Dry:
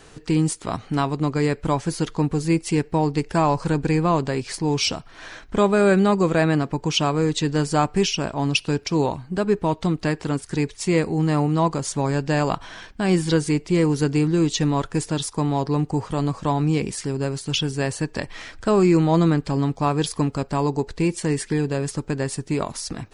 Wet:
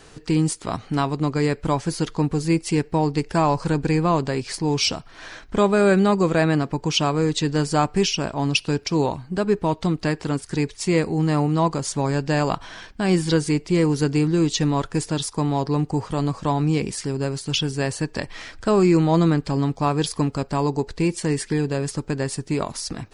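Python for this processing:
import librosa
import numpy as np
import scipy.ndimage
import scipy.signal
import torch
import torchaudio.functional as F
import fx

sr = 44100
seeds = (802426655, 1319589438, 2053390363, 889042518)

y = fx.peak_eq(x, sr, hz=4800.0, db=2.5, octaves=0.4)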